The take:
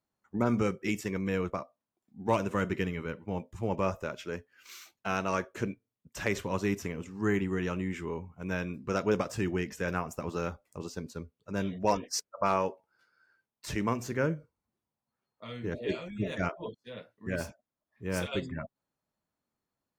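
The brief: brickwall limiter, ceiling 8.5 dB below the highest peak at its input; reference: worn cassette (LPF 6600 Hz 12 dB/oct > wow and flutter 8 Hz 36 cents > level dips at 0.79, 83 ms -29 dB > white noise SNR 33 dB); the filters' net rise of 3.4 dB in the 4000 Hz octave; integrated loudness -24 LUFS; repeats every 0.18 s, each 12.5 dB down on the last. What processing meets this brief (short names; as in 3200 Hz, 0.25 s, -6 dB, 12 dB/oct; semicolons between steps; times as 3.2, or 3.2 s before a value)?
bell 4000 Hz +5.5 dB; limiter -22.5 dBFS; LPF 6600 Hz 12 dB/oct; feedback echo 0.18 s, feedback 24%, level -12.5 dB; wow and flutter 8 Hz 36 cents; level dips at 0.79, 83 ms -29 dB; white noise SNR 33 dB; gain +12 dB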